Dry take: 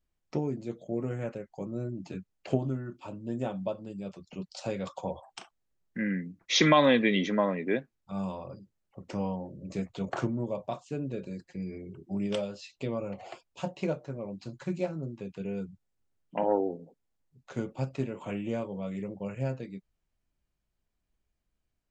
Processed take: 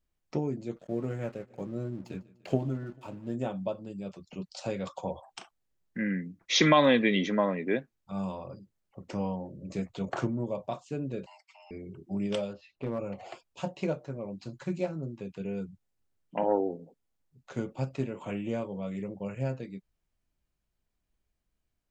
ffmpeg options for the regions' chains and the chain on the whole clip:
-filter_complex "[0:a]asettb=1/sr,asplit=3[s0][s1][s2];[s0]atrim=end=0.764[s3];[s1]atrim=start=0.76:end=3.35,asetpts=PTS-STARTPTS,afade=t=in:d=0.004:c=qsin,afade=t=out:st=2.586:d=0.004:c=qsin,aeval=exprs='sgn(val(0))*max(abs(val(0))-0.0015,0)':c=same,aecho=1:1:148|296|444|592:0.0794|0.0445|0.0249|0.0139,atrim=end_sample=114219[s4];[s2]atrim=start=3.346[s5];[s3][s4]acrossfade=d=0.004:c1=hsin:c2=qsin[s6];[s6][s5]acrossfade=d=0.004:c1=qsin:c2=hsin,asettb=1/sr,asplit=3[s7][s8][s9];[s7]atrim=end=11.264[s10];[s8]atrim=start=11.26:end=11.71,asetpts=PTS-STARTPTS,afade=t=in:d=0.004:c=qsin,afade=t=out:st=0.446:d=0.004:c=qsin,highpass=770,lowpass=5800,afreqshift=430[s11];[s9]atrim=start=11.706[s12];[s10][s11]acrossfade=d=0.004:c1=hsin:c2=qsin[s13];[s13][s12]acrossfade=d=0.004:c1=qsin:c2=hsin,asettb=1/sr,asplit=3[s14][s15][s16];[s14]atrim=end=12.534[s17];[s15]atrim=start=12.53:end=12.99,asetpts=PTS-STARTPTS,afade=t=in:d=0.004:c=qsin,afade=t=out:st=0.456:d=0.004:c=qsin,lowpass=1900,asoftclip=type=hard:threshold=0.0501[s18];[s16]atrim=start=12.986[s19];[s17][s18]acrossfade=d=0.004:c1=hsin:c2=qsin[s20];[s20][s19]acrossfade=d=0.004:c1=qsin:c2=hsin"

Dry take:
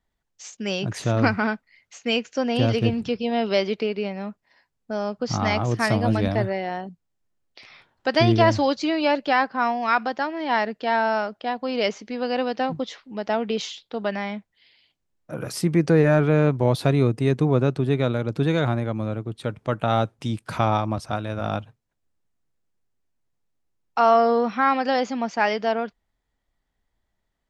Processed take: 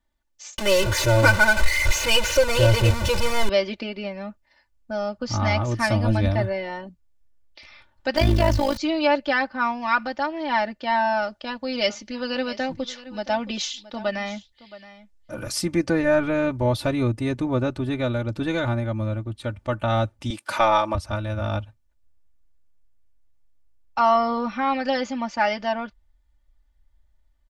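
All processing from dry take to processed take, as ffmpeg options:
-filter_complex "[0:a]asettb=1/sr,asplit=3[s0][s1][s2];[s0]atrim=end=0.584[s3];[s1]atrim=start=0.58:end=3.49,asetpts=PTS-STARTPTS,afade=t=in:d=0.004:c=qsin,afade=t=out:st=2.906:d=0.004:c=qsin,aeval=exprs='val(0)+0.5*0.0944*sgn(val(0))':c=same,adynamicsmooth=sensitivity=8:basefreq=1500,aecho=1:1:2:0.92,atrim=end_sample=128331[s4];[s2]atrim=start=3.486[s5];[s3][s4]acrossfade=d=0.004:c1=hsin:c2=qsin[s6];[s6][s5]acrossfade=d=0.004:c1=qsin:c2=hsin,asettb=1/sr,asplit=3[s7][s8][s9];[s7]atrim=end=8.164[s10];[s8]atrim=start=8.16:end=8.77,asetpts=PTS-STARTPTS,afade=t=in:d=0.004:c=qsin,afade=t=out:st=0.606:d=0.004:c=qsin,aeval=exprs='val(0)+0.5*0.0531*sgn(val(0))':c=same,tremolo=f=53:d=0.824[s11];[s9]atrim=start=8.766[s12];[s10][s11]acrossfade=d=0.004:c1=hsin:c2=qsin[s13];[s13][s12]acrossfade=d=0.004:c1=qsin:c2=hsin,asettb=1/sr,asplit=3[s14][s15][s16];[s14]atrim=end=11.224[s17];[s15]atrim=start=11.22:end=15.84,asetpts=PTS-STARTPTS,afade=t=in:d=0.004:c=qsin,afade=t=out:st=4.616:d=0.004:c=qsin,equalizer=f=6000:w=0.77:g=6,aecho=1:1:671:0.141,atrim=end_sample=203742[s18];[s16]atrim=start=15.836[s19];[s17][s18]acrossfade=d=0.004:c1=hsin:c2=qsin[s20];[s20][s19]acrossfade=d=0.004:c1=qsin:c2=hsin,asettb=1/sr,asplit=3[s21][s22][s23];[s21]atrim=end=20.304[s24];[s22]atrim=start=20.3:end=20.95,asetpts=PTS-STARTPTS,afade=t=in:d=0.004:c=qsin,afade=t=out:st=0.646:d=0.004:c=qsin,highpass=430,acontrast=64[s25];[s23]atrim=start=20.946[s26];[s24][s25]acrossfade=d=0.004:c1=hsin:c2=qsin[s27];[s27][s26]acrossfade=d=0.004:c1=qsin:c2=hsin,asubboost=boost=5:cutoff=110,aecho=1:1:3.4:0.87,volume=0.75"

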